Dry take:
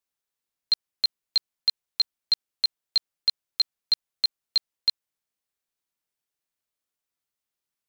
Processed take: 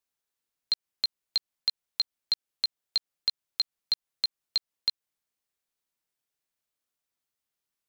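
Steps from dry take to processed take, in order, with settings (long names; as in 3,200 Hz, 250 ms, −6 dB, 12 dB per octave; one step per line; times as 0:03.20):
downward compressor, threshold −24 dBFS, peak gain reduction 7 dB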